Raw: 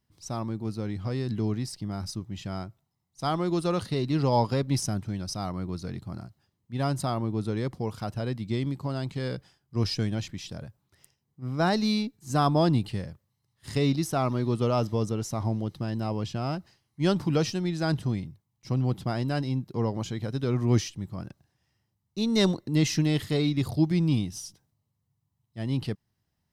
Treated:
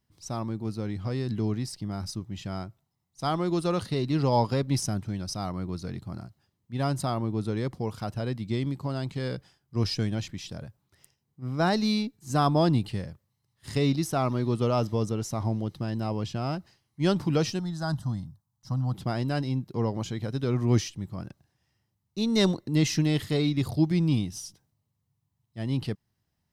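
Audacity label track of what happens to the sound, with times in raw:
17.590000	18.940000	fixed phaser centre 990 Hz, stages 4

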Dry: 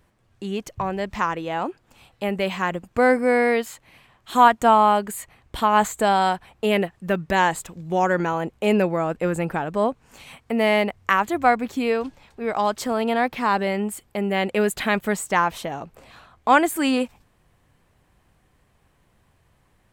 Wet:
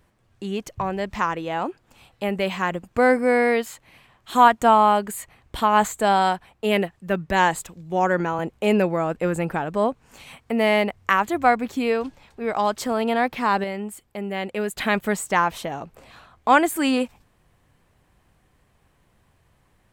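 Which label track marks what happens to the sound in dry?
5.970000	8.390000	three-band expander depth 40%
13.640000	14.780000	gain -5.5 dB

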